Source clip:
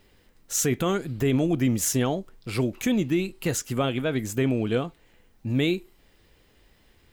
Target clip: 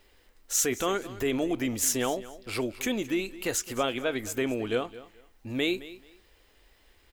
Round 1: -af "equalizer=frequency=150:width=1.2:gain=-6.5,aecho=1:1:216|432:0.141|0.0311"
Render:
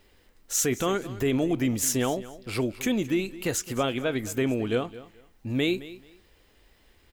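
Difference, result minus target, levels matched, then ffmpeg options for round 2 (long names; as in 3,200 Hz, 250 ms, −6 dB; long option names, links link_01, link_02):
125 Hz band +6.5 dB
-af "equalizer=frequency=150:width=1.2:gain=-17.5,aecho=1:1:216|432:0.141|0.0311"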